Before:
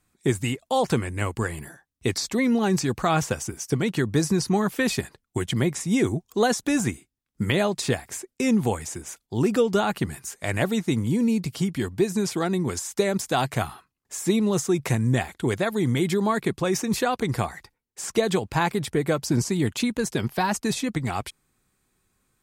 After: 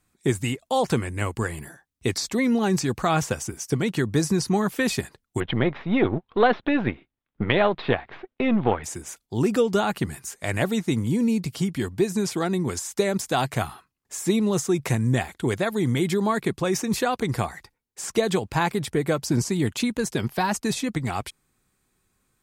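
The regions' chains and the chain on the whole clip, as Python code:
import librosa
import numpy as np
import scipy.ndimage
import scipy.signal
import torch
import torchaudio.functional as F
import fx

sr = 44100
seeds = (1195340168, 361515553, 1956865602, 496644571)

y = fx.chain(x, sr, fx.halfwave_gain(db=-7.0),
    fx.steep_lowpass(hz=3800.0, slope=48),
    fx.peak_eq(hz=890.0, db=7.0, octaves=2.9), at=(5.4, 8.84))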